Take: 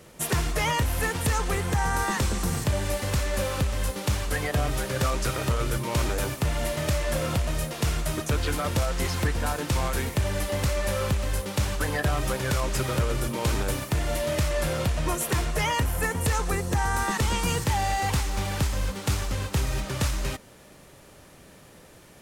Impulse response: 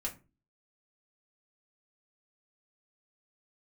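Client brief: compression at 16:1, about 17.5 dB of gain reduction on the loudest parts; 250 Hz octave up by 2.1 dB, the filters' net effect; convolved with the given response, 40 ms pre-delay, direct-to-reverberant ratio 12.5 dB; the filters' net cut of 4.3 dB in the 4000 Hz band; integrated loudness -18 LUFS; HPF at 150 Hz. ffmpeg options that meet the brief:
-filter_complex "[0:a]highpass=150,equalizer=f=250:t=o:g=4.5,equalizer=f=4k:t=o:g=-6,acompressor=threshold=-40dB:ratio=16,asplit=2[a][b];[1:a]atrim=start_sample=2205,adelay=40[c];[b][c]afir=irnorm=-1:irlink=0,volume=-13.5dB[d];[a][d]amix=inputs=2:normalize=0,volume=26dB"

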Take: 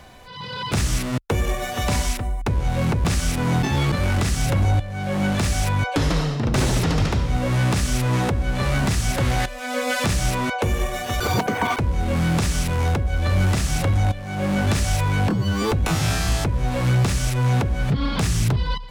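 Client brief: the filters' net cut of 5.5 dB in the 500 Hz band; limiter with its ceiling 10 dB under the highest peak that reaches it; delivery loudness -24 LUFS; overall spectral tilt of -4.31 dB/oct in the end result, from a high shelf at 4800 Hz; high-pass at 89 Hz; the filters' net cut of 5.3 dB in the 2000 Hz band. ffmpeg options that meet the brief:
-af "highpass=89,equalizer=f=500:t=o:g=-6.5,equalizer=f=2k:t=o:g=-8.5,highshelf=f=4.8k:g=9,volume=2.5dB,alimiter=limit=-15dB:level=0:latency=1"

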